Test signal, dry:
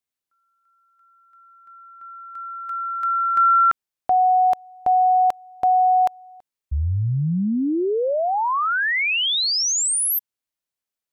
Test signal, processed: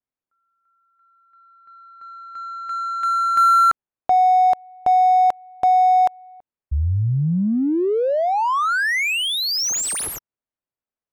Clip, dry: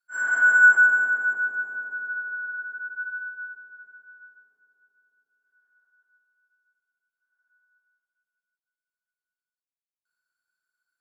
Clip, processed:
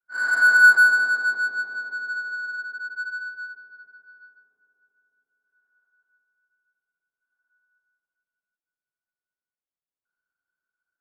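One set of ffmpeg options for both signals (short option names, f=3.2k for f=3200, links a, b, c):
-af "adynamicequalizer=threshold=0.0126:dfrequency=3700:dqfactor=1.1:tfrequency=3700:tqfactor=1.1:attack=5:release=100:ratio=0.375:range=2:mode=cutabove:tftype=bell,adynamicsmooth=sensitivity=5:basefreq=1.7k,volume=2dB"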